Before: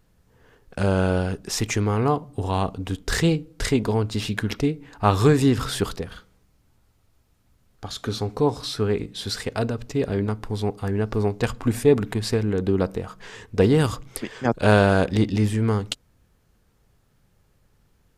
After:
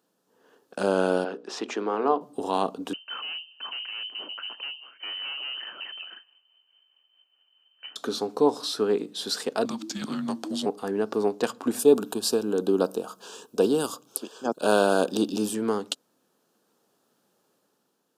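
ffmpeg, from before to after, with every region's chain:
-filter_complex "[0:a]asettb=1/sr,asplit=3[a][b][c];[a]atrim=end=1.244[d];[b]atrim=start=1.24:end=2.21,asetpts=PTS-STARTPTS,afade=t=in:d=0.004:c=qsin,afade=t=out:st=0.966:d=0.004:c=qsin,highpass=290,lowpass=3.1k,bandreject=f=60:t=h:w=6,bandreject=f=120:t=h:w=6,bandreject=f=180:t=h:w=6,bandreject=f=240:t=h:w=6,bandreject=f=300:t=h:w=6,bandreject=f=360:t=h:w=6,bandreject=f=420:t=h:w=6,bandreject=f=480:t=h:w=6,bandreject=f=540:t=h:w=6[e];[c]atrim=start=2.206[f];[d][e]acrossfade=d=0.004:c1=hsin:c2=qsin[g];[g][f]acrossfade=d=0.004:c1=qsin:c2=hsin,asettb=1/sr,asplit=3[h][i][j];[h]atrim=end=2.934[k];[i]atrim=start=2.93:end=7.96,asetpts=PTS-STARTPTS,afade=t=in:d=0.004:c=qsin,afade=t=out:st=5.026:d=0.004:c=qsin,tremolo=f=4.7:d=0.46,aeval=exprs='(tanh(35.5*val(0)+0.2)-tanh(0.2))/35.5':c=same,lowpass=f=2.6k:t=q:w=0.5098,lowpass=f=2.6k:t=q:w=0.6013,lowpass=f=2.6k:t=q:w=0.9,lowpass=f=2.6k:t=q:w=2.563,afreqshift=-3100[l];[j]atrim=start=7.956[m];[k][l]acrossfade=d=0.004:c1=hsin:c2=qsin[n];[n][m]acrossfade=d=0.004:c1=qsin:c2=hsin,asettb=1/sr,asplit=3[o][p][q];[o]atrim=end=9.654[r];[p]atrim=start=9.65:end=10.66,asetpts=PTS-STARTPTS,afade=t=in:d=0.004:c=qsin,afade=t=out:st=1.006:d=0.004:c=qsin,equalizer=f=5.9k:t=o:w=1.9:g=7.5,afreqshift=-340[s];[q]atrim=start=10.656[t];[r][s]acrossfade=d=0.004:c1=hsin:c2=qsin[u];[u][t]acrossfade=d=0.004:c1=qsin:c2=hsin,asettb=1/sr,asplit=3[v][w][x];[v]atrim=end=11.794[y];[w]atrim=start=11.79:end=15.55,asetpts=PTS-STARTPTS,afade=t=in:d=0.004:c=qsin,afade=t=out:st=3.756:d=0.004:c=qsin,asuperstop=centerf=2000:order=4:qfactor=2.3,highshelf=f=7.5k:g=12[z];[x]atrim=start=15.546[aa];[y][z]acrossfade=d=0.004:c1=hsin:c2=qsin[ab];[ab][aa]acrossfade=d=0.004:c1=qsin:c2=hsin,highpass=f=240:w=0.5412,highpass=f=240:w=1.3066,equalizer=f=2.1k:t=o:w=0.48:g=-12,dynaudnorm=f=130:g=9:m=4.5dB,volume=-3.5dB"

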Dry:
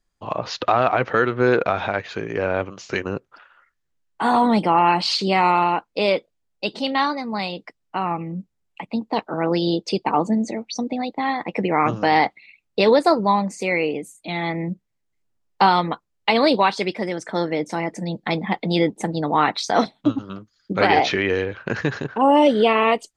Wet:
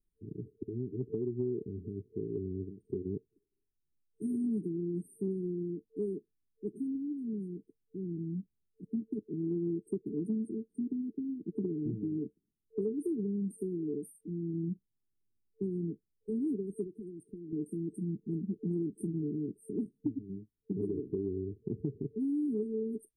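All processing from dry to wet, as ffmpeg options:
-filter_complex "[0:a]asettb=1/sr,asplit=3[a][b][c];[a]atrim=end=16.844[d];[b]atrim=start=16.84:end=17.53,asetpts=PTS-STARTPTS,afade=t=in:d=0.004:c=qsin,afade=t=out:st=0.686:d=0.004:c=qsin,agate=range=-6dB:threshold=-32dB:ratio=16:release=100:detection=peak,acompressor=threshold=-30dB:ratio=12:attack=3.2:release=140:knee=1:detection=peak[e];[c]atrim=start=17.526[f];[d][e]acrossfade=d=0.004:c1=hsin:c2=qsin[g];[g][f]acrossfade=d=0.004:c1=qsin:c2=hsin,afftfilt=real='re*(1-between(b*sr/4096,450,8500))':imag='im*(1-between(b*sr/4096,450,8500))':win_size=4096:overlap=0.75,acompressor=threshold=-23dB:ratio=6,volume=-7dB"

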